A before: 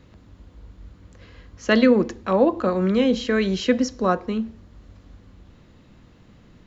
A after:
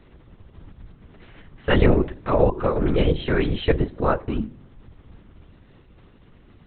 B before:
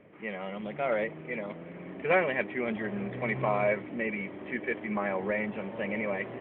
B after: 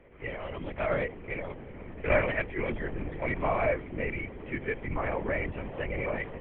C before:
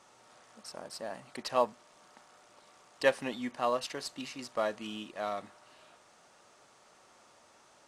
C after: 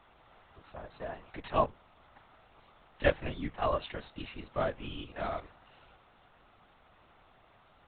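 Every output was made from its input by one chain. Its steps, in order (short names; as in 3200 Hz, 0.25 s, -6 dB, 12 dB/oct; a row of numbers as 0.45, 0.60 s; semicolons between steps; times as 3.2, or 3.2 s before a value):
LPC vocoder at 8 kHz whisper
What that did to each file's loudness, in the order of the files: -1.5, -0.5, 0.0 LU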